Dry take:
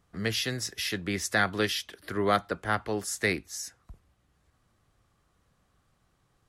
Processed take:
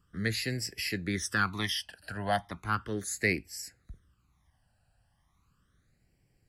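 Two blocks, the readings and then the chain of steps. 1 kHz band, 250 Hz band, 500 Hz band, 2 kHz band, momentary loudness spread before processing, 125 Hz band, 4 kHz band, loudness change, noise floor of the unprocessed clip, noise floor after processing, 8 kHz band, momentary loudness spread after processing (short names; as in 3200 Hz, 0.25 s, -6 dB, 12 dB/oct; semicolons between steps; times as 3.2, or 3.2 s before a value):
-3.0 dB, -2.0 dB, -6.0 dB, -2.0 dB, 8 LU, +0.5 dB, -3.0 dB, -2.5 dB, -72 dBFS, -73 dBFS, -3.0 dB, 10 LU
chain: phaser stages 12, 0.36 Hz, lowest notch 360–1200 Hz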